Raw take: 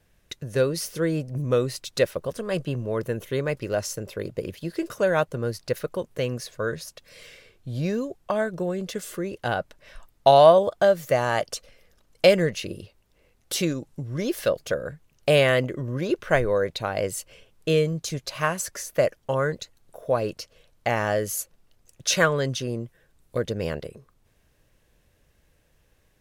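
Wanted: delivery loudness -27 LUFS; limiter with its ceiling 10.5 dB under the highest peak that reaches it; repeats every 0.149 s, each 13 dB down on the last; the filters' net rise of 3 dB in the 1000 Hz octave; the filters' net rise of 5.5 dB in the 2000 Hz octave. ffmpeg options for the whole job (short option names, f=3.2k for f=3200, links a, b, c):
-af "equalizer=f=1k:t=o:g=3,equalizer=f=2k:t=o:g=6,alimiter=limit=-11.5dB:level=0:latency=1,aecho=1:1:149|298|447:0.224|0.0493|0.0108,volume=-1dB"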